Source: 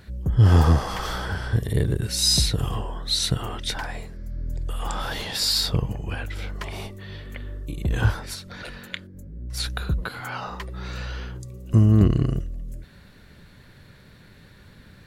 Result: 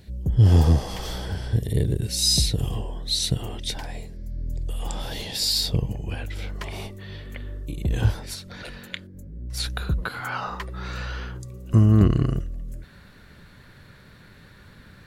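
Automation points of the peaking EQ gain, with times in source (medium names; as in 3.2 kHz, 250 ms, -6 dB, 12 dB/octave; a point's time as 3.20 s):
peaking EQ 1.3 kHz 1 oct
5.74 s -13.5 dB
6.64 s -2 dB
7.61 s -2 dB
8.09 s -11.5 dB
8.41 s -3 dB
9.59 s -3 dB
10.20 s +4 dB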